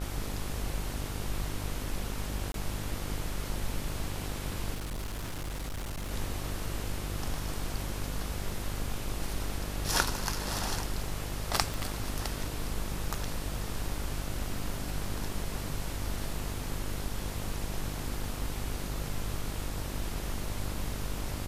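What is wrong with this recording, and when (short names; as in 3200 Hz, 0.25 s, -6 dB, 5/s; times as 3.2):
buzz 50 Hz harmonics 29 -38 dBFS
2.52–2.54 gap 22 ms
4.74–6.11 clipped -33 dBFS
11.74 pop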